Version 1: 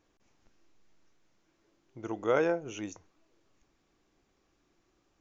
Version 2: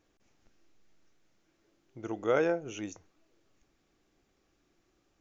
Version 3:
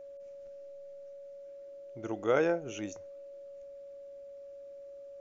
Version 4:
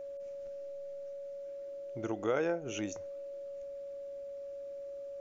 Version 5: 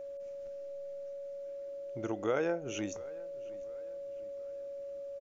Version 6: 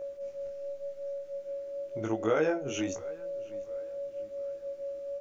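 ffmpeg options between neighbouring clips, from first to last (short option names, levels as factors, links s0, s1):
-af "equalizer=f=1000:w=4.4:g=-5"
-af "aeval=exprs='val(0)+0.00562*sin(2*PI*560*n/s)':c=same"
-af "acompressor=threshold=0.0112:ratio=2,volume=1.68"
-filter_complex "[0:a]asplit=2[s0][s1];[s1]adelay=707,lowpass=f=3400:p=1,volume=0.0891,asplit=2[s2][s3];[s3]adelay=707,lowpass=f=3400:p=1,volume=0.47,asplit=2[s4][s5];[s5]adelay=707,lowpass=f=3400:p=1,volume=0.47[s6];[s0][s2][s4][s6]amix=inputs=4:normalize=0"
-af "flanger=delay=18:depth=4:speed=0.9,volume=2.24"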